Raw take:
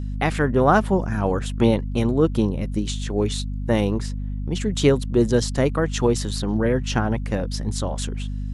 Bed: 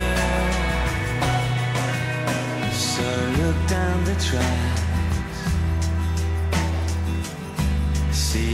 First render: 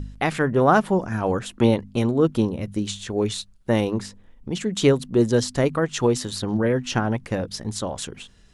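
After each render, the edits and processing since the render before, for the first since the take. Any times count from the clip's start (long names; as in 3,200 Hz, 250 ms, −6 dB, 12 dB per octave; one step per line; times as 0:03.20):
hum removal 50 Hz, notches 5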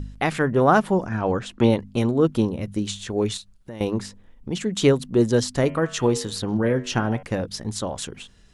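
0:01.08–0:01.69: low-pass filter 4,200 Hz → 8,200 Hz
0:03.37–0:03.81: downward compressor 3 to 1, threshold −38 dBFS
0:05.60–0:07.23: hum removal 93.53 Hz, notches 35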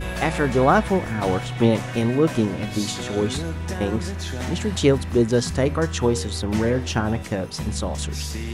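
mix in bed −7.5 dB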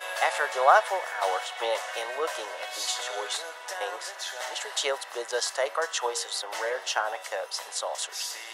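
Butterworth high-pass 570 Hz 36 dB per octave
notch filter 2,400 Hz, Q 7.9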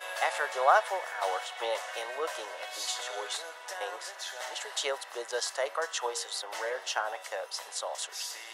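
level −4 dB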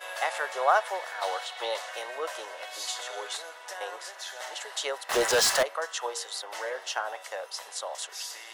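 0:00.94–0:01.89: parametric band 4,100 Hz +6.5 dB 0.51 octaves
0:05.09–0:05.63: leveller curve on the samples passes 5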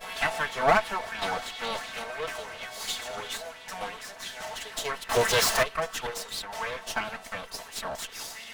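lower of the sound and its delayed copy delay 4.5 ms
auto-filter bell 2.9 Hz 590–3,600 Hz +8 dB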